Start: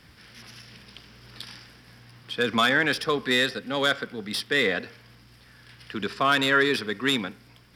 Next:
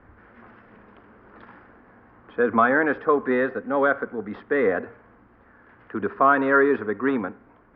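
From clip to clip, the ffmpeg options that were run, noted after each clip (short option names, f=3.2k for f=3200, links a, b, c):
-af "lowpass=f=1.4k:w=0.5412,lowpass=f=1.4k:w=1.3066,equalizer=f=150:w=2.2:g=-14.5,bandreject=f=60:t=h:w=6,bandreject=f=120:t=h:w=6,volume=6.5dB"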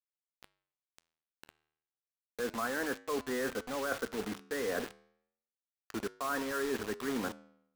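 -af "areverse,acompressor=threshold=-27dB:ratio=12,areverse,acrusher=bits=5:mix=0:aa=0.000001,flanger=delay=9.3:depth=3.6:regen=-89:speed=0.32:shape=sinusoidal"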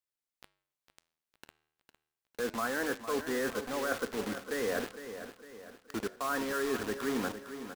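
-af "aecho=1:1:456|912|1368|1824|2280:0.282|0.132|0.0623|0.0293|0.0138,volume=1.5dB"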